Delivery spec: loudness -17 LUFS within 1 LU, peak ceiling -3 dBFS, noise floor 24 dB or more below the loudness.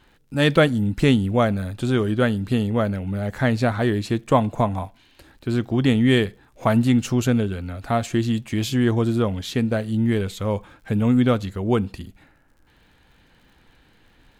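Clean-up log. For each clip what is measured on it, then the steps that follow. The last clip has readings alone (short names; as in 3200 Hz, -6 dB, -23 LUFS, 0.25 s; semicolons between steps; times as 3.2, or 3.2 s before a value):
ticks 51/s; loudness -21.5 LUFS; peak -3.5 dBFS; loudness target -17.0 LUFS
-> de-click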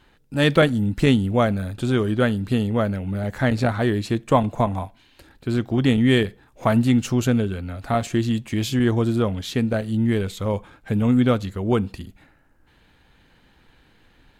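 ticks 0.76/s; loudness -22.0 LUFS; peak -3.5 dBFS; loudness target -17.0 LUFS
-> gain +5 dB; limiter -3 dBFS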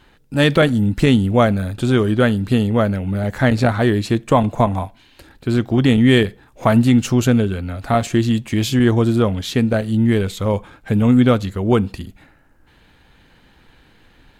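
loudness -17.0 LUFS; peak -3.0 dBFS; noise floor -53 dBFS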